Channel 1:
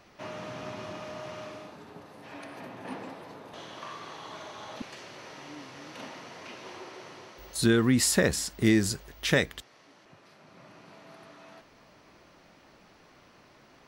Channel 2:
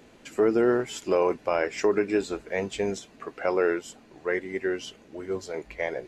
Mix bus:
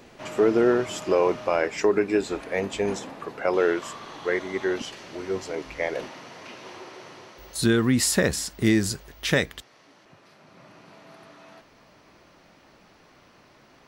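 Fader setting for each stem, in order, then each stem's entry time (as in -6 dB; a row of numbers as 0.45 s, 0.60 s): +2.0 dB, +2.0 dB; 0.00 s, 0.00 s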